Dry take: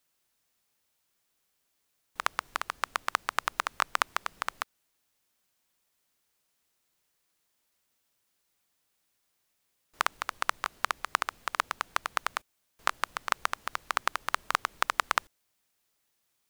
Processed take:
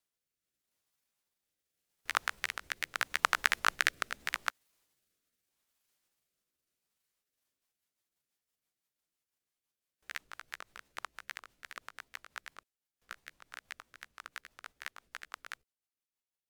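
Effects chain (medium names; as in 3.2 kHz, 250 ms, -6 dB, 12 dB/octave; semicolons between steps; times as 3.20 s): sawtooth pitch modulation +8.5 st, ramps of 374 ms; Doppler pass-by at 3.87 s, 17 m/s, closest 22 m; rotary cabinet horn 0.8 Hz, later 6 Hz, at 6.88 s; trim +4.5 dB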